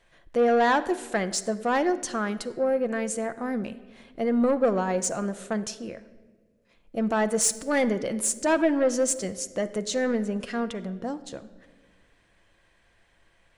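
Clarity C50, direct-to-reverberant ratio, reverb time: 15.0 dB, 10.0 dB, 1.5 s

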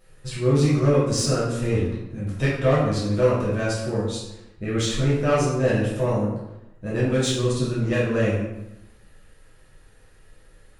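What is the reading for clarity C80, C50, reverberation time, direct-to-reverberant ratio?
4.5 dB, 1.0 dB, 0.95 s, −8.5 dB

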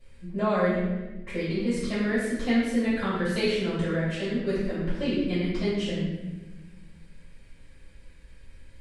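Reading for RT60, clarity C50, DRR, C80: 1.2 s, −0.5 dB, −15.5 dB, 2.0 dB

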